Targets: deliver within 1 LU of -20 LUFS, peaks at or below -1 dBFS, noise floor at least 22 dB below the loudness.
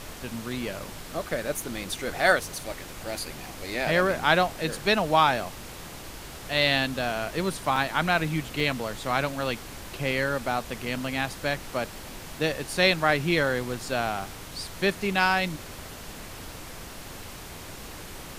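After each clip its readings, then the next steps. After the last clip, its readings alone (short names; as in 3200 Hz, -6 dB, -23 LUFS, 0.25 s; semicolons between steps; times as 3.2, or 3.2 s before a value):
dropouts 2; longest dropout 2.9 ms; noise floor -41 dBFS; noise floor target -49 dBFS; loudness -26.5 LUFS; peak -5.0 dBFS; loudness target -20.0 LUFS
-> interpolate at 7.76/8.6, 2.9 ms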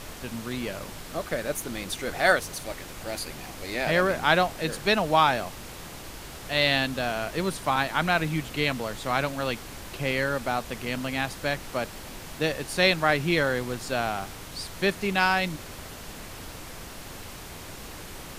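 dropouts 0; noise floor -41 dBFS; noise floor target -49 dBFS
-> noise print and reduce 8 dB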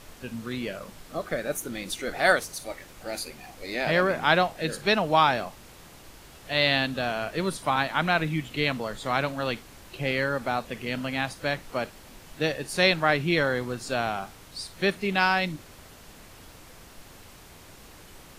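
noise floor -49 dBFS; loudness -26.5 LUFS; peak -5.0 dBFS; loudness target -20.0 LUFS
-> gain +6.5 dB; limiter -1 dBFS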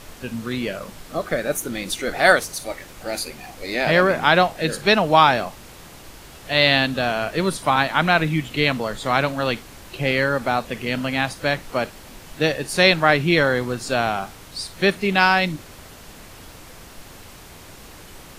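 loudness -20.0 LUFS; peak -1.0 dBFS; noise floor -43 dBFS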